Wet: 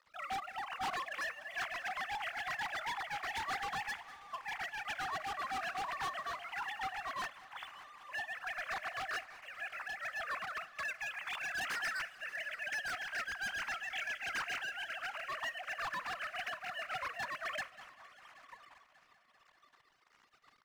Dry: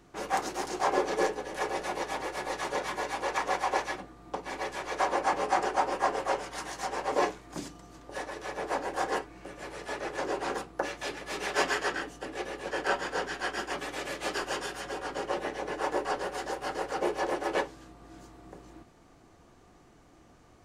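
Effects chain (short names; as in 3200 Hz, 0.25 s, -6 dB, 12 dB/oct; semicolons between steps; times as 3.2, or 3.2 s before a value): sine-wave speech; steep high-pass 870 Hz 36 dB/oct; high shelf 2500 Hz +9.5 dB; in parallel at +2.5 dB: compressor, threshold -50 dBFS, peak gain reduction 24 dB; on the sum: crossover distortion -59.5 dBFS; 13.64–14.34 frequency shift +24 Hz; overloaded stage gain 34.5 dB; multi-head echo 0.195 s, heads first and third, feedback 63%, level -21 dB; on a send at -22 dB: reverb RT60 0.30 s, pre-delay 4 ms; on the sum: noise-modulated level, depth 55%; gain +1 dB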